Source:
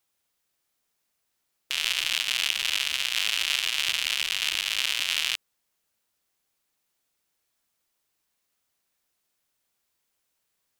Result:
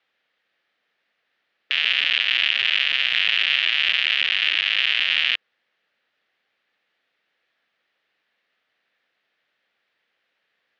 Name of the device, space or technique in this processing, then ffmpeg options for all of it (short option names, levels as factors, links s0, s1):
overdrive pedal into a guitar cabinet: -filter_complex "[0:a]asplit=2[s0][s1];[s1]highpass=f=720:p=1,volume=5.01,asoftclip=type=tanh:threshold=0.668[s2];[s0][s2]amix=inputs=2:normalize=0,lowpass=f=7900:p=1,volume=0.501,highpass=100,equalizer=f=220:t=q:w=4:g=3,equalizer=f=510:t=q:w=4:g=4,equalizer=f=990:t=q:w=4:g=-7,equalizer=f=1800:t=q:w=4:g=6,lowpass=f=3500:w=0.5412,lowpass=f=3500:w=1.3066,volume=1.26"